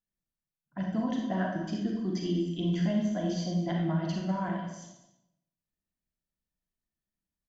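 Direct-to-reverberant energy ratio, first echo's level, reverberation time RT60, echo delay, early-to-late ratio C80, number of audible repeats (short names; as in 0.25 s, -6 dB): -0.5 dB, -14.0 dB, 0.90 s, 0.201 s, 5.0 dB, 1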